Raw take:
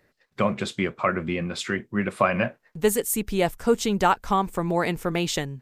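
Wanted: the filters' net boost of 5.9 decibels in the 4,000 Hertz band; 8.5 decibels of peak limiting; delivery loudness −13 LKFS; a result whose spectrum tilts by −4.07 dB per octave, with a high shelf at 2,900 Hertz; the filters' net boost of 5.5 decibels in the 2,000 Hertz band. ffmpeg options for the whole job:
ffmpeg -i in.wav -af "equalizer=frequency=2000:width_type=o:gain=6.5,highshelf=frequency=2900:gain=-5,equalizer=frequency=4000:width_type=o:gain=9,volume=13dB,alimiter=limit=-0.5dB:level=0:latency=1" out.wav

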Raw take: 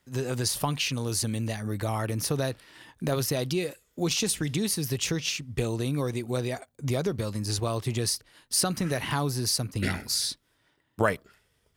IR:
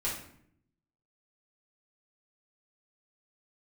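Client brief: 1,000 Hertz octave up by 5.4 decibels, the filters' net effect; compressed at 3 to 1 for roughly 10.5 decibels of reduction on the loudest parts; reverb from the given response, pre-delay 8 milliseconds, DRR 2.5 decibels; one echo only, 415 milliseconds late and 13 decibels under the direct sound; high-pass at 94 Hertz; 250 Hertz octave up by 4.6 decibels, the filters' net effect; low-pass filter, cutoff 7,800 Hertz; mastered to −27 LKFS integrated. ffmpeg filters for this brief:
-filter_complex "[0:a]highpass=94,lowpass=7800,equalizer=frequency=250:width_type=o:gain=6,equalizer=frequency=1000:width_type=o:gain=6.5,acompressor=threshold=-29dB:ratio=3,aecho=1:1:415:0.224,asplit=2[link_01][link_02];[1:a]atrim=start_sample=2205,adelay=8[link_03];[link_02][link_03]afir=irnorm=-1:irlink=0,volume=-7.5dB[link_04];[link_01][link_04]amix=inputs=2:normalize=0,volume=3dB"

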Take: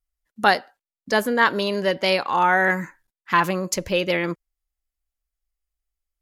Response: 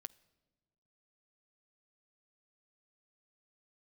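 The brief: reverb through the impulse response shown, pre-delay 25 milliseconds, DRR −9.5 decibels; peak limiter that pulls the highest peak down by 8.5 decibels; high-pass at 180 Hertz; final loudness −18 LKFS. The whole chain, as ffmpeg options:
-filter_complex "[0:a]highpass=180,alimiter=limit=-10dB:level=0:latency=1,asplit=2[link_01][link_02];[1:a]atrim=start_sample=2205,adelay=25[link_03];[link_02][link_03]afir=irnorm=-1:irlink=0,volume=15dB[link_04];[link_01][link_04]amix=inputs=2:normalize=0,volume=-5dB"

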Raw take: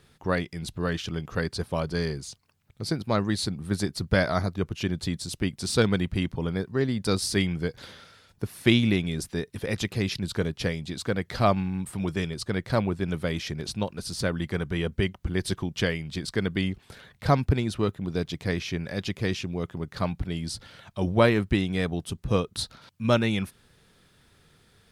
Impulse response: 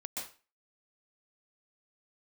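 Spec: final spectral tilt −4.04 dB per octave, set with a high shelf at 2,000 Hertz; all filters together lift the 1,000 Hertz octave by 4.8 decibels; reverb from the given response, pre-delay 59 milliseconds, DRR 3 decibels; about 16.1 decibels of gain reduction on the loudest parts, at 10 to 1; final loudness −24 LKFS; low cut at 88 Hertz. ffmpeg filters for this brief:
-filter_complex "[0:a]highpass=88,equalizer=frequency=1000:width_type=o:gain=5,highshelf=frequency=2000:gain=5.5,acompressor=threshold=-29dB:ratio=10,asplit=2[link_01][link_02];[1:a]atrim=start_sample=2205,adelay=59[link_03];[link_02][link_03]afir=irnorm=-1:irlink=0,volume=-3dB[link_04];[link_01][link_04]amix=inputs=2:normalize=0,volume=9dB"

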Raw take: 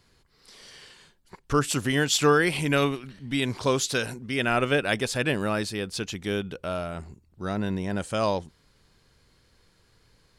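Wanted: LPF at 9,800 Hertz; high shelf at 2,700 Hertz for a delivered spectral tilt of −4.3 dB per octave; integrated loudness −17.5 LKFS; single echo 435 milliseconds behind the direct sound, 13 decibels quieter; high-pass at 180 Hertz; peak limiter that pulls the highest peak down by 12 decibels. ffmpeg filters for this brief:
ffmpeg -i in.wav -af "highpass=180,lowpass=9800,highshelf=frequency=2700:gain=-7,alimiter=limit=-21.5dB:level=0:latency=1,aecho=1:1:435:0.224,volume=15.5dB" out.wav

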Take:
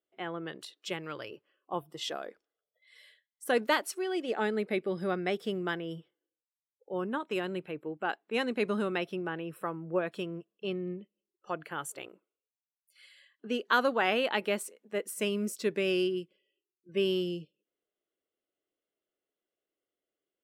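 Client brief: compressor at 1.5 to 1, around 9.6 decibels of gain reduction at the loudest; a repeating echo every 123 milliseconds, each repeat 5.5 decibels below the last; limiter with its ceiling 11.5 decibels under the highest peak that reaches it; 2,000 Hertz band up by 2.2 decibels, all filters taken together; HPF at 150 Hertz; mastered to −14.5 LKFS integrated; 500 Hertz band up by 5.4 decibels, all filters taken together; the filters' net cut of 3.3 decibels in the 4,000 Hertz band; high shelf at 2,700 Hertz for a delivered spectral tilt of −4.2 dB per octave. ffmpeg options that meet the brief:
ffmpeg -i in.wav -af "highpass=150,equalizer=frequency=500:width_type=o:gain=7,equalizer=frequency=2000:width_type=o:gain=5.5,highshelf=frequency=2700:gain=-5,equalizer=frequency=4000:width_type=o:gain=-4,acompressor=threshold=-45dB:ratio=1.5,alimiter=level_in=6.5dB:limit=-24dB:level=0:latency=1,volume=-6.5dB,aecho=1:1:123|246|369|492|615|738|861:0.531|0.281|0.149|0.079|0.0419|0.0222|0.0118,volume=25.5dB" out.wav

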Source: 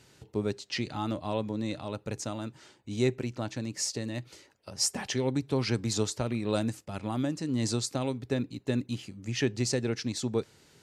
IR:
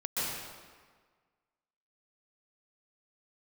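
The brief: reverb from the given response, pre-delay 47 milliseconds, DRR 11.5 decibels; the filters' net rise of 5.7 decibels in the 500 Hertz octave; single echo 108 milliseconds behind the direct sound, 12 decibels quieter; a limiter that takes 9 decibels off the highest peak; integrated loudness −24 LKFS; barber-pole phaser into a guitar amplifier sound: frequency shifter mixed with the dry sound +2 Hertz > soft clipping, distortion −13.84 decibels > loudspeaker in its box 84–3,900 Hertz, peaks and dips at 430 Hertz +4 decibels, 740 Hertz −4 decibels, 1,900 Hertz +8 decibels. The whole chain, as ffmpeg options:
-filter_complex "[0:a]equalizer=frequency=500:width_type=o:gain=4.5,alimiter=limit=-21.5dB:level=0:latency=1,aecho=1:1:108:0.251,asplit=2[link_01][link_02];[1:a]atrim=start_sample=2205,adelay=47[link_03];[link_02][link_03]afir=irnorm=-1:irlink=0,volume=-18.5dB[link_04];[link_01][link_04]amix=inputs=2:normalize=0,asplit=2[link_05][link_06];[link_06]afreqshift=2[link_07];[link_05][link_07]amix=inputs=2:normalize=1,asoftclip=threshold=-30.5dB,highpass=84,equalizer=frequency=430:width_type=q:width=4:gain=4,equalizer=frequency=740:width_type=q:width=4:gain=-4,equalizer=frequency=1900:width_type=q:width=4:gain=8,lowpass=frequency=3900:width=0.5412,lowpass=frequency=3900:width=1.3066,volume=14.5dB"

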